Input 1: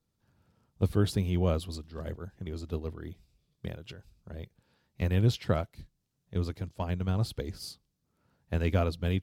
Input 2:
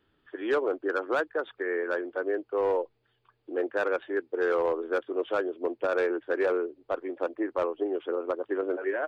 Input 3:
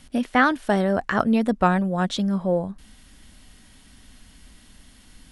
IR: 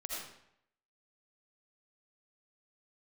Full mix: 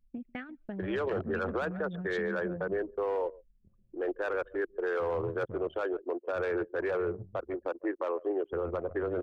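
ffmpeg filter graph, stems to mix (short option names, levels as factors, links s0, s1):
-filter_complex "[0:a]lowpass=f=1300:p=1,asoftclip=type=hard:threshold=0.0794,volume=0.188,asplit=2[s0][s1];[s1]volume=0.668[s2];[1:a]highpass=340,adelay=450,volume=1.19,asplit=2[s3][s4];[s4]volume=0.119[s5];[2:a]equalizer=f=160:t=o:w=0.67:g=11,equalizer=f=1000:t=o:w=0.67:g=-12,equalizer=f=2500:t=o:w=0.67:g=11,acompressor=threshold=0.0708:ratio=8,volume=0.224,asplit=2[s6][s7];[s7]volume=0.188[s8];[s2][s5][s8]amix=inputs=3:normalize=0,aecho=0:1:144:1[s9];[s0][s3][s6][s9]amix=inputs=4:normalize=0,anlmdn=2.51,alimiter=limit=0.0631:level=0:latency=1:release=14"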